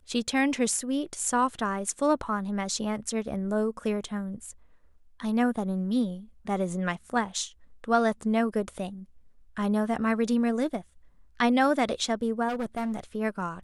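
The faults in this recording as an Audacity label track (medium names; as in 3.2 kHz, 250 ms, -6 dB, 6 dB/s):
12.480000	13.000000	clipped -26.5 dBFS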